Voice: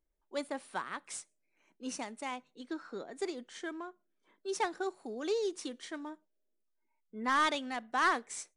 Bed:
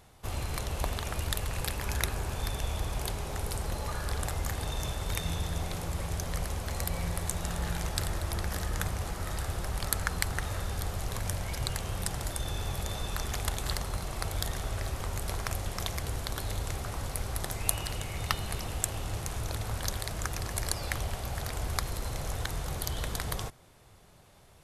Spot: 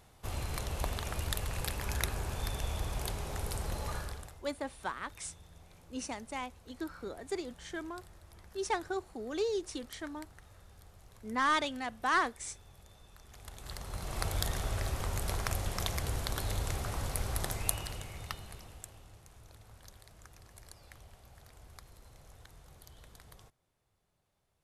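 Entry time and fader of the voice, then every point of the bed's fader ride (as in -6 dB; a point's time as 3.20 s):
4.10 s, 0.0 dB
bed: 3.97 s -3 dB
4.43 s -23 dB
13.22 s -23 dB
14.19 s -0.5 dB
17.47 s -0.5 dB
19.18 s -21.5 dB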